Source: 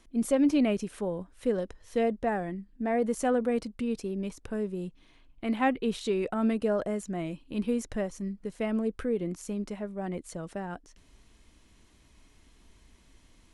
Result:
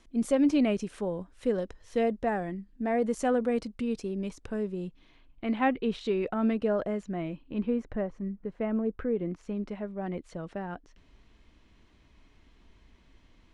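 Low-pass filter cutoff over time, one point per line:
0:04.35 8,000 Hz
0:05.49 3,900 Hz
0:06.90 3,900 Hz
0:07.96 1,700 Hz
0:08.89 1,700 Hz
0:09.90 3,700 Hz

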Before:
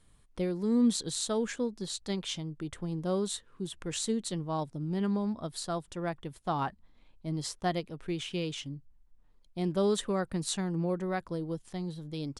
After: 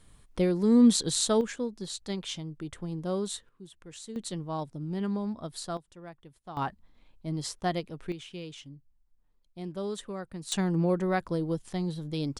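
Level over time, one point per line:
+6 dB
from 0:01.41 −0.5 dB
from 0:03.49 −11 dB
from 0:04.16 −1 dB
from 0:05.77 −11.5 dB
from 0:06.57 +1 dB
from 0:08.12 −7 dB
from 0:10.52 +5 dB

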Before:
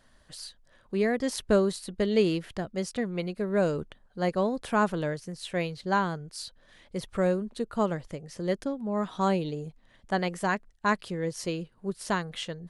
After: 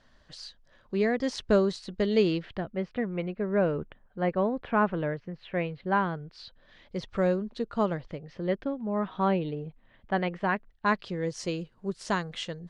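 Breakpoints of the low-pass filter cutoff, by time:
low-pass filter 24 dB per octave
0:02.21 6,200 Hz
0:02.78 2,700 Hz
0:05.86 2,700 Hz
0:06.96 5,600 Hz
0:07.72 5,600 Hz
0:08.54 3,200 Hz
0:10.53 3,200 Hz
0:11.38 7,500 Hz

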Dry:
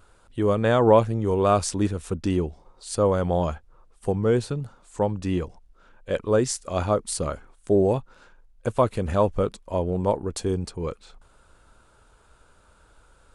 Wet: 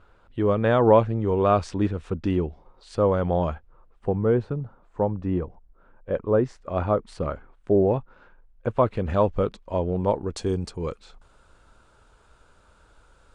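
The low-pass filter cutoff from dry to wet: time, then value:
0:03.47 3,000 Hz
0:04.63 1,300 Hz
0:06.29 1,300 Hz
0:06.98 2,200 Hz
0:08.72 2,200 Hz
0:09.19 4,000 Hz
0:10.09 4,000 Hz
0:10.54 7,600 Hz

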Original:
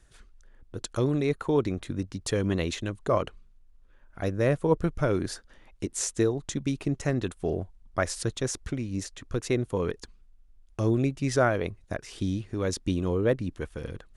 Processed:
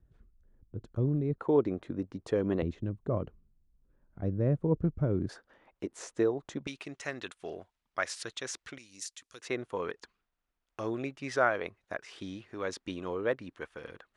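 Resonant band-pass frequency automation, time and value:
resonant band-pass, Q 0.65
110 Hz
from 0:01.38 480 Hz
from 0:02.62 140 Hz
from 0:05.29 740 Hz
from 0:06.67 2,400 Hz
from 0:08.78 7,100 Hz
from 0:09.42 1,400 Hz

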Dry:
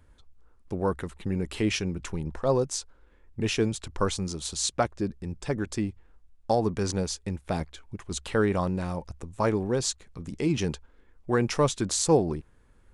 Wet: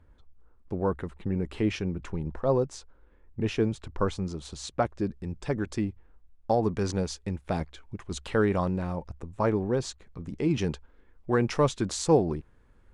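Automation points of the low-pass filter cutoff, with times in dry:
low-pass filter 6 dB per octave
1,500 Hz
from 0:04.86 3,600 Hz
from 0:05.85 1,900 Hz
from 0:06.63 3,800 Hz
from 0:08.78 1,900 Hz
from 0:10.51 3,400 Hz

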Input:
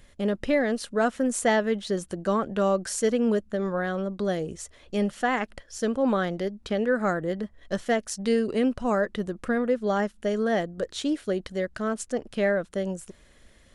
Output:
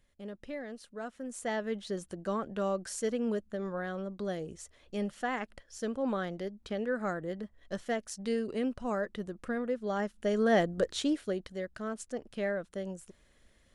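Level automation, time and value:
0:01.15 −17 dB
0:01.74 −8.5 dB
0:09.89 −8.5 dB
0:10.72 +2 dB
0:11.52 −9 dB

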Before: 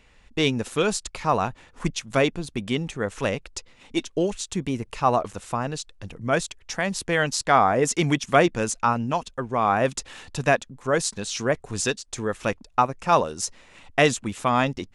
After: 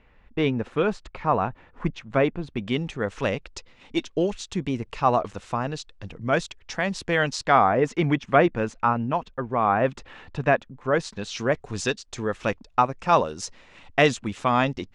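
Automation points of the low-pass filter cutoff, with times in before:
0:02.34 2,000 Hz
0:02.83 4,900 Hz
0:07.36 4,900 Hz
0:07.94 2,300 Hz
0:10.70 2,300 Hz
0:11.54 5,200 Hz

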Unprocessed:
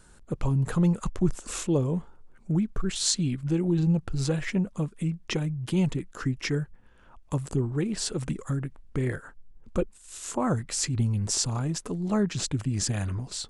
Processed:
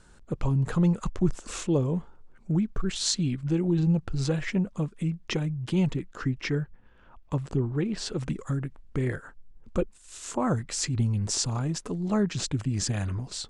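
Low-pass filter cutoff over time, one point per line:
0:05.61 7,200 Hz
0:06.50 4,400 Hz
0:07.88 4,400 Hz
0:08.54 8,200 Hz

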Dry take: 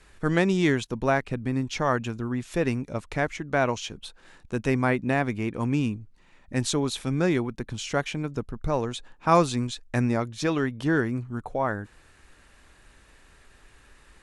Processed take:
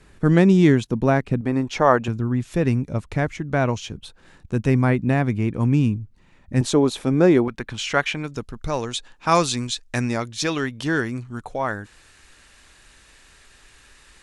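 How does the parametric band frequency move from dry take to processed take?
parametric band +10 dB 2.9 octaves
170 Hz
from 0:01.41 660 Hz
from 0:02.08 100 Hz
from 0:06.61 430 Hz
from 0:07.48 1,900 Hz
from 0:08.24 5,600 Hz

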